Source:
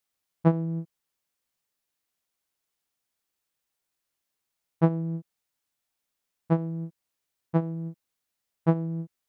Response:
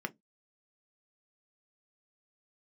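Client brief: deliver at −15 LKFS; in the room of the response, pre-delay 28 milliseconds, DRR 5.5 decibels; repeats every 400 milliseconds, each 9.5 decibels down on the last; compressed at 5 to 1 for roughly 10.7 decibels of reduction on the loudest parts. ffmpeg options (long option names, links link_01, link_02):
-filter_complex "[0:a]acompressor=threshold=-28dB:ratio=5,aecho=1:1:400|800|1200|1600:0.335|0.111|0.0365|0.012,asplit=2[link_01][link_02];[1:a]atrim=start_sample=2205,adelay=28[link_03];[link_02][link_03]afir=irnorm=-1:irlink=0,volume=-8dB[link_04];[link_01][link_04]amix=inputs=2:normalize=0,volume=18dB"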